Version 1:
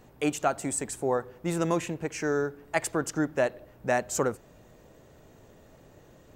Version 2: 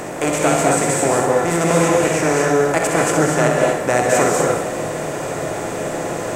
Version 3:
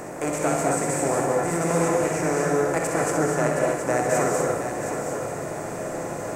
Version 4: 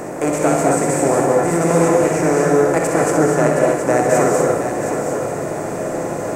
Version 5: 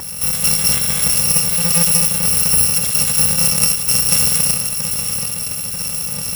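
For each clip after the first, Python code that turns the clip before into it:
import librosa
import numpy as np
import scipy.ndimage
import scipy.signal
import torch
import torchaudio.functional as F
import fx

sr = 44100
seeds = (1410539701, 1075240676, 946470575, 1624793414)

y1 = fx.bin_compress(x, sr, power=0.4)
y1 = fx.room_flutter(y1, sr, wall_m=11.1, rt60_s=0.52)
y1 = fx.rev_gated(y1, sr, seeds[0], gate_ms=270, shape='rising', drr_db=-1.0)
y1 = y1 * librosa.db_to_amplitude(3.0)
y2 = fx.peak_eq(y1, sr, hz=3300.0, db=-9.5, octaves=0.79)
y2 = y2 + 10.0 ** (-8.0 / 20.0) * np.pad(y2, (int(719 * sr / 1000.0), 0))[:len(y2)]
y2 = y2 * librosa.db_to_amplitude(-7.0)
y3 = fx.peak_eq(y2, sr, hz=330.0, db=4.5, octaves=2.5)
y3 = y3 * librosa.db_to_amplitude(4.5)
y4 = fx.bit_reversed(y3, sr, seeds[1], block=128)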